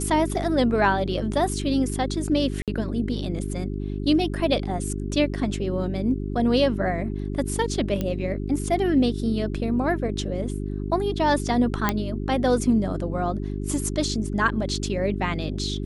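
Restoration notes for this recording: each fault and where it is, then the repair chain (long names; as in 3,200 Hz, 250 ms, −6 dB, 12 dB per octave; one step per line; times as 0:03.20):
mains hum 50 Hz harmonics 8 −29 dBFS
0:02.62–0:02.68: drop-out 57 ms
0:08.01: click −14 dBFS
0:11.89: click −6 dBFS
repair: click removal
hum removal 50 Hz, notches 8
repair the gap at 0:02.62, 57 ms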